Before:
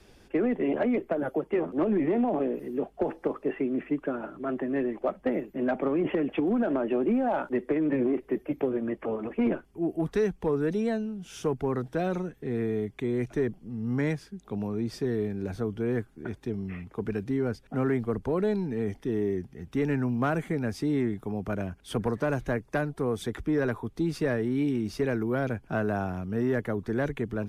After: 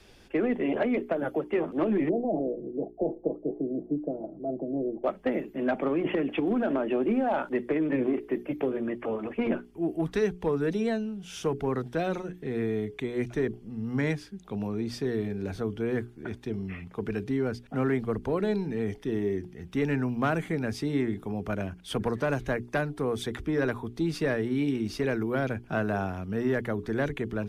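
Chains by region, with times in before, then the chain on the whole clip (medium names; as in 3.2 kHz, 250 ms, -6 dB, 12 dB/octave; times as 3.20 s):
2.09–5.04 s: elliptic low-pass 690 Hz, stop band 70 dB + comb 6.1 ms, depth 42%
whole clip: peaking EQ 3.3 kHz +4.5 dB 1.6 oct; hum notches 60/120/180/240/300/360/420 Hz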